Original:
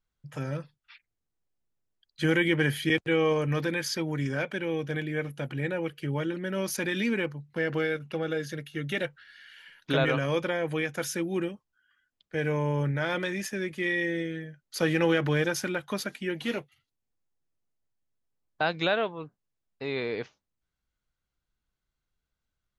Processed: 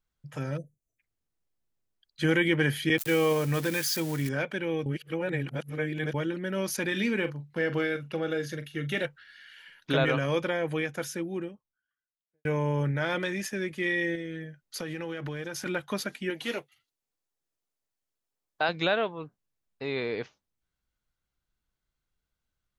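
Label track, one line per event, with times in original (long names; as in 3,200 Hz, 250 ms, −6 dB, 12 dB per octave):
0.570000	0.990000	time-frequency box erased 700–5,900 Hz
2.980000	4.290000	spike at every zero crossing of −27 dBFS
4.860000	6.140000	reverse
6.880000	9.060000	double-tracking delay 41 ms −12 dB
10.580000	12.450000	fade out and dull
14.150000	15.660000	downward compressor, threshold −32 dBFS
16.300000	18.690000	bass and treble bass −10 dB, treble +3 dB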